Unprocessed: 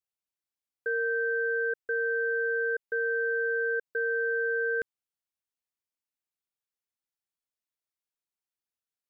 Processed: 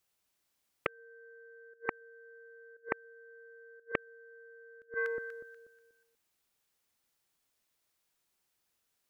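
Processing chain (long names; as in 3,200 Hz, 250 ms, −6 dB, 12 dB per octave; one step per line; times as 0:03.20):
delay that swaps between a low-pass and a high-pass 121 ms, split 1,100 Hz, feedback 55%, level −8 dB
gate with flip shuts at −27 dBFS, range −41 dB
highs frequency-modulated by the lows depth 0.34 ms
level +13 dB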